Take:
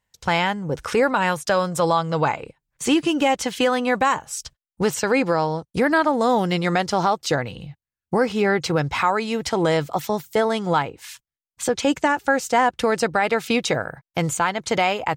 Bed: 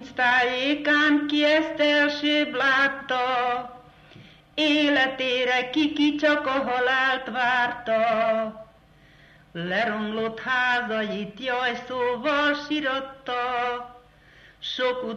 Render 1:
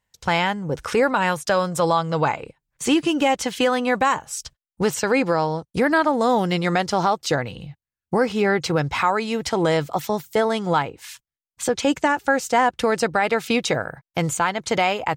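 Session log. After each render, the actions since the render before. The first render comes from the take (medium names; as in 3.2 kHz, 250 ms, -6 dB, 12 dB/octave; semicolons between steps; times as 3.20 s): no audible change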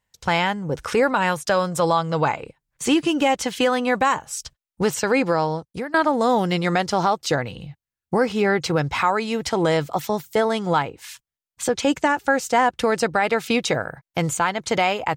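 5.53–5.94 s: fade out, to -23 dB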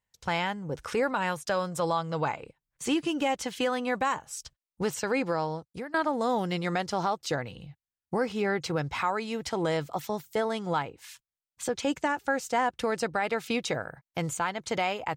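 trim -8.5 dB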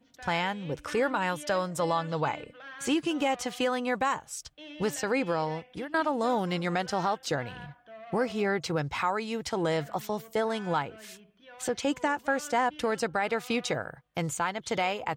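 add bed -24.5 dB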